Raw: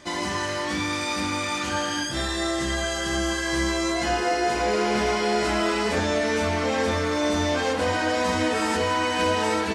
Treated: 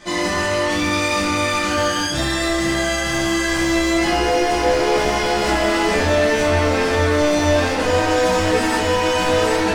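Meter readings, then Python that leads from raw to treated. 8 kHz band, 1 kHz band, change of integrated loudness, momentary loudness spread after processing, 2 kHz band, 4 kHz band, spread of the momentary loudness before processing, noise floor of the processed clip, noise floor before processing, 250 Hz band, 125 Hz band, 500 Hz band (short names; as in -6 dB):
+5.5 dB, +5.5 dB, +6.5 dB, 3 LU, +6.0 dB, +5.5 dB, 3 LU, -21 dBFS, -28 dBFS, +6.0 dB, +7.5 dB, +7.5 dB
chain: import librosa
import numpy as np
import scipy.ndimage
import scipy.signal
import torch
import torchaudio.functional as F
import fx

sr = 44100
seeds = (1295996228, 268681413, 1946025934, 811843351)

y = np.clip(x, -10.0 ** (-22.5 / 20.0), 10.0 ** (-22.5 / 20.0))
y = fx.room_shoebox(y, sr, seeds[0], volume_m3=56.0, walls='mixed', distance_m=1.5)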